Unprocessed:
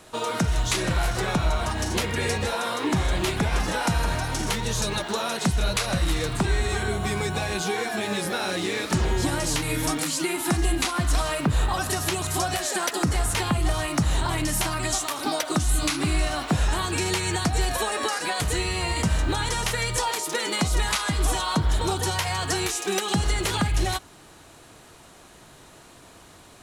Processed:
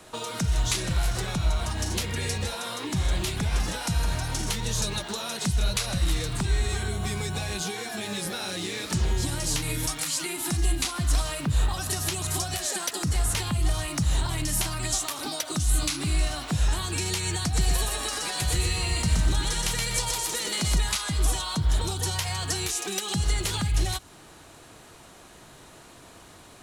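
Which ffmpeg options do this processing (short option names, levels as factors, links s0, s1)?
-filter_complex "[0:a]asettb=1/sr,asplit=3[s0][s1][s2];[s0]atrim=end=9.864[s3];[s1]atrim=start=9.86:end=10.26,asetpts=PTS-STARTPTS,afade=t=in:d=0.004:c=qsin,afade=t=out:st=0.396:d=0.004:c=qsin,equalizer=f=290:t=o:w=1.9:g=-11[s4];[s2]atrim=start=10.256[s5];[s3][s4]acrossfade=d=0.004:c1=hsin:c2=qsin[s6];[s6][s5]acrossfade=d=0.004:c1=qsin:c2=hsin,asettb=1/sr,asplit=3[s7][s8][s9];[s7]atrim=end=17.444[s10];[s8]atrim=start=17.44:end=20.77,asetpts=PTS-STARTPTS,afade=t=in:d=0.004:c=qsin,afade=t=out:st=3.326:d=0.004:c=qsin,aecho=1:1:123|246|369|492|615:0.708|0.248|0.0867|0.0304|0.0106,atrim=end_sample=146853[s11];[s9]atrim=start=20.766[s12];[s10][s11]acrossfade=d=0.004:c1=hsin:c2=qsin[s13];[s13][s12]acrossfade=d=0.004:c1=qsin:c2=hsin,acrossover=split=170|3000[s14][s15][s16];[s15]acompressor=threshold=0.02:ratio=6[s17];[s14][s17][s16]amix=inputs=3:normalize=0"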